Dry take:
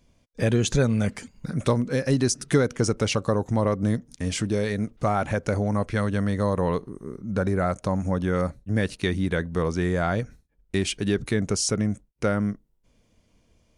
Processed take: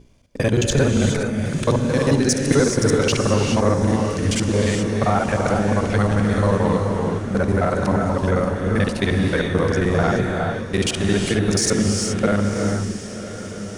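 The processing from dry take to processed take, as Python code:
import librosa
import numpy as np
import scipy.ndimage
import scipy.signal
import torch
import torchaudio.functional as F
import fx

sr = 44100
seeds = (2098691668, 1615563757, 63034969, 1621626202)

p1 = fx.local_reverse(x, sr, ms=44.0)
p2 = fx.rev_gated(p1, sr, seeds[0], gate_ms=450, shape='rising', drr_db=3.0)
p3 = 10.0 ** (-25.0 / 20.0) * np.tanh(p2 / 10.0 ** (-25.0 / 20.0))
p4 = p2 + F.gain(torch.from_numpy(p3), -7.0).numpy()
p5 = fx.dmg_buzz(p4, sr, base_hz=60.0, harmonics=7, level_db=-49.0, tilt_db=-4, odd_only=False)
p6 = fx.hum_notches(p5, sr, base_hz=60, count=7)
p7 = p6 + fx.echo_diffused(p6, sr, ms=1043, feedback_pct=57, wet_db=-12.5, dry=0)
y = F.gain(torch.from_numpy(p7), 3.0).numpy()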